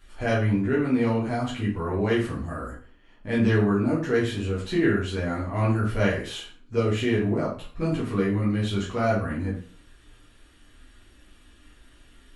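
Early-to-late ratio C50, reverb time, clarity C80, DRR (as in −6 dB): 5.0 dB, 0.40 s, 10.0 dB, −7.0 dB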